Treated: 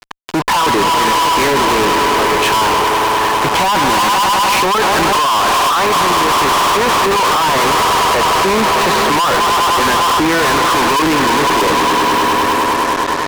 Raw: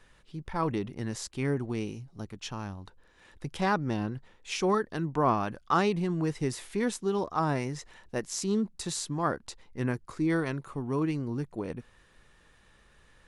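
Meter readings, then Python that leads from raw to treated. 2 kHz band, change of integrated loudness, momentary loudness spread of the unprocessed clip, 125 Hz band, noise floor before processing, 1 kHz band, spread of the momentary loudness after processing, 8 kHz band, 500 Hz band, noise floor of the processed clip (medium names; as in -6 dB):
+24.5 dB, +19.0 dB, 14 LU, +6.5 dB, -62 dBFS, +24.5 dB, 2 LU, +21.0 dB, +16.5 dB, -16 dBFS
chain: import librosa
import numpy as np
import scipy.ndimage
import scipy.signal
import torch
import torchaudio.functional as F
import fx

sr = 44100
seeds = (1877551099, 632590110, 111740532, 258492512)

p1 = x + fx.echo_swell(x, sr, ms=101, loudest=5, wet_db=-17.5, dry=0)
p2 = fx.leveller(p1, sr, passes=2)
p3 = fx.bandpass_edges(p2, sr, low_hz=680.0, high_hz=2800.0)
p4 = fx.air_absorb(p3, sr, metres=430.0)
p5 = np.clip(p4, -10.0 ** (-26.0 / 20.0), 10.0 ** (-26.0 / 20.0))
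p6 = fx.over_compress(p5, sr, threshold_db=-35.0, ratio=-0.5)
p7 = fx.peak_eq(p6, sr, hz=1000.0, db=12.0, octaves=0.29)
p8 = fx.fuzz(p7, sr, gain_db=55.0, gate_db=-57.0)
y = p8 * 10.0 ** (1.5 / 20.0)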